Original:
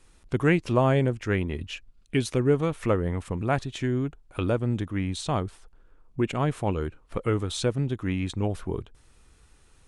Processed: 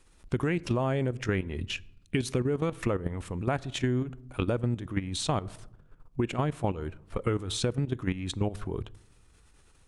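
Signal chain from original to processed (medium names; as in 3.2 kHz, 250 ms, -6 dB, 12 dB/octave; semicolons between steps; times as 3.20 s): level held to a coarse grid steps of 13 dB; on a send at -23 dB: reverberation RT60 0.70 s, pre-delay 16 ms; on the sum: compression, threshold -30 dBFS, peak gain reduction 8.5 dB; trim +6 dB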